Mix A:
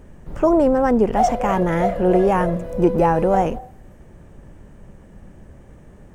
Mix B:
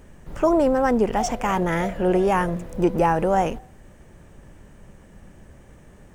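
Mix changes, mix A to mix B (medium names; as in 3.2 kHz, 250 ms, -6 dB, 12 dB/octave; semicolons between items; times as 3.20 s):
background -9.0 dB; master: add tilt shelf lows -4 dB, about 1.3 kHz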